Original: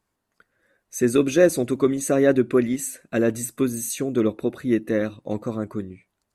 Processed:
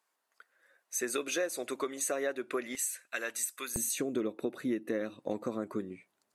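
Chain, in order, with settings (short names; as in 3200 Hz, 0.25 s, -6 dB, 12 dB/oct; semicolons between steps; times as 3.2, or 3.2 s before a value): HPF 660 Hz 12 dB/oct, from 2.75 s 1400 Hz, from 3.76 s 240 Hz; compressor 6:1, threshold -30 dBFS, peak gain reduction 13 dB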